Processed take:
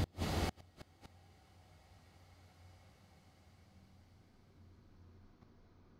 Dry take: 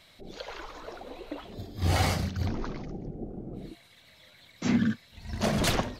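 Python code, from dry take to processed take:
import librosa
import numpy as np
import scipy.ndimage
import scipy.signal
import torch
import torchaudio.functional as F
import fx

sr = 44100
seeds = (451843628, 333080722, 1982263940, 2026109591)

y = fx.rider(x, sr, range_db=5, speed_s=0.5)
y = fx.paulstretch(y, sr, seeds[0], factor=5.9, window_s=1.0, from_s=1.64)
y = fx.gate_flip(y, sr, shuts_db=-24.0, range_db=-34)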